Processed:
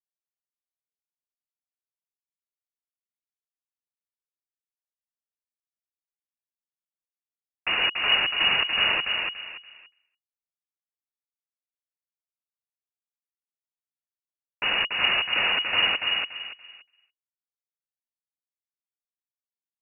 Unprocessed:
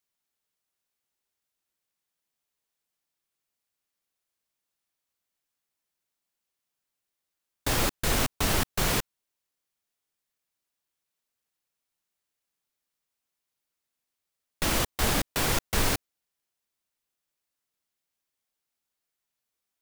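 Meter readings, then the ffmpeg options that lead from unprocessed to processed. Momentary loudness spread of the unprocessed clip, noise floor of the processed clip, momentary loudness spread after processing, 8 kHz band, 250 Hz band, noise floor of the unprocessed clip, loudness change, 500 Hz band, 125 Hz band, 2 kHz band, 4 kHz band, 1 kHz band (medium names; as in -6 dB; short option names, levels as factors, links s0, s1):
5 LU, under -85 dBFS, 14 LU, under -40 dB, -11.5 dB, -85 dBFS, +5.0 dB, -4.5 dB, -17.0 dB, +9.5 dB, +11.5 dB, +1.0 dB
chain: -filter_complex "[0:a]asplit=2[s0][s1];[s1]adelay=286,lowpass=f=2300:p=1,volume=0.708,asplit=2[s2][s3];[s3]adelay=286,lowpass=f=2300:p=1,volume=0.29,asplit=2[s4][s5];[s5]adelay=286,lowpass=f=2300:p=1,volume=0.29,asplit=2[s6][s7];[s7]adelay=286,lowpass=f=2300:p=1,volume=0.29[s8];[s0][s2][s4][s6][s8]amix=inputs=5:normalize=0,lowpass=f=2500:t=q:w=0.5098,lowpass=f=2500:t=q:w=0.6013,lowpass=f=2500:t=q:w=0.9,lowpass=f=2500:t=q:w=2.563,afreqshift=-2900,agate=range=0.0224:threshold=0.00251:ratio=3:detection=peak,volume=1.33"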